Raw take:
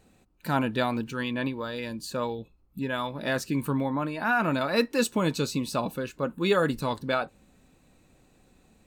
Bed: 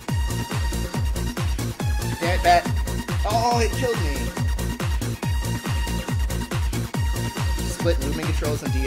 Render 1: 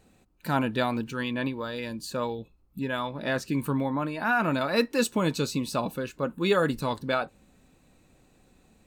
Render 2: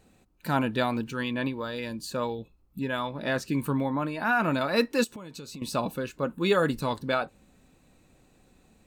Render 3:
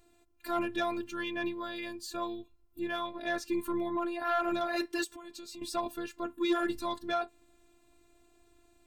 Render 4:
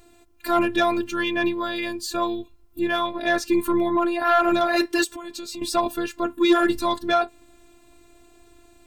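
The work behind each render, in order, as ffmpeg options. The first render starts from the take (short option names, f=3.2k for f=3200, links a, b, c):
-filter_complex "[0:a]asettb=1/sr,asplit=3[a][b][c];[a]atrim=end=2.994[d];[b]atrim=start=2.99:end=3.48,asetpts=PTS-STARTPTS,afade=t=in:d=0.004:c=qsin,afade=t=out:st=0.486:d=0.004:c=qsin,highshelf=f=7.3k:g=-8.5[e];[c]atrim=start=3.476[f];[d][e]acrossfade=d=0.004:c1=hsin:c2=qsin[g];[g][f]acrossfade=d=0.004:c1=qsin:c2=hsin"
-filter_complex "[0:a]asettb=1/sr,asplit=3[a][b][c];[a]atrim=end=5.044[d];[b]atrim=start=5.04:end=5.62,asetpts=PTS-STARTPTS,afade=t=in:d=0.004:c=qsin,afade=t=out:st=0.576:d=0.004:c=qsin,acompressor=threshold=-37dB:ratio=16:attack=3.2:release=140:knee=1:detection=peak[e];[c]atrim=start=5.616[f];[d][e]acrossfade=d=0.004:c1=hsin:c2=qsin[g];[g][f]acrossfade=d=0.004:c1=qsin:c2=hsin"
-af "afftfilt=real='hypot(re,im)*cos(PI*b)':imag='0':win_size=512:overlap=0.75,asoftclip=type=tanh:threshold=-20dB"
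-af "volume=11.5dB"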